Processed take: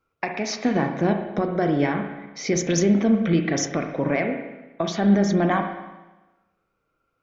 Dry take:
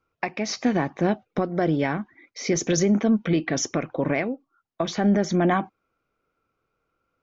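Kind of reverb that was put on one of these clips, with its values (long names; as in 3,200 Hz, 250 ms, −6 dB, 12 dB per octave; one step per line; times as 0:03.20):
spring reverb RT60 1.1 s, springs 35/59 ms, chirp 75 ms, DRR 4.5 dB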